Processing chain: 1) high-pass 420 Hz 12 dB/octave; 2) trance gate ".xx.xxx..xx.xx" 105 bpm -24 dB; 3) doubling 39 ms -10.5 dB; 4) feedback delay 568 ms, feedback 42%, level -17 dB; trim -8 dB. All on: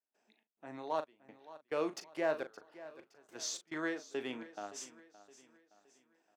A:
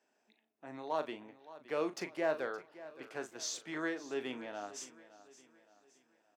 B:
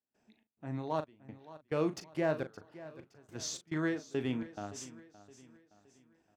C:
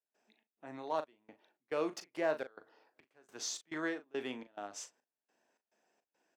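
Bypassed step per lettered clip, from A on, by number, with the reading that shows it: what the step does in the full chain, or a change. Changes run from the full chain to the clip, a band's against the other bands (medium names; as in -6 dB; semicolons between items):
2, momentary loudness spread change -1 LU; 1, 125 Hz band +18.0 dB; 4, echo-to-direct -16.0 dB to none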